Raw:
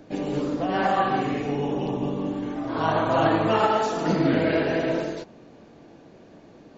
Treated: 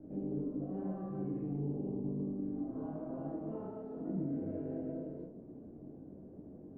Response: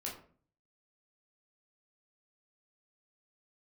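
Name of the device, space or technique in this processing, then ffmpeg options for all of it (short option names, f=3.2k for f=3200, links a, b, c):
television next door: -filter_complex "[0:a]asettb=1/sr,asplit=3[a][b][c];[a]atrim=end=0.844[d];[b]atrim=start=0.84:end=1.59,asetpts=PTS-STARTPTS,afade=t=in:d=0.004:c=qsin,afade=t=out:st=0.746:d=0.004:c=qsin,aecho=1:1:5.9:0.65,atrim=end_sample=33075[e];[c]atrim=start=1.586[f];[d][e]acrossfade=d=0.004:c1=hsin:c2=qsin[g];[g][f]acrossfade=d=0.004:c1=qsin:c2=hsin,acompressor=threshold=-38dB:ratio=3,lowpass=350[h];[1:a]atrim=start_sample=2205[i];[h][i]afir=irnorm=-1:irlink=0"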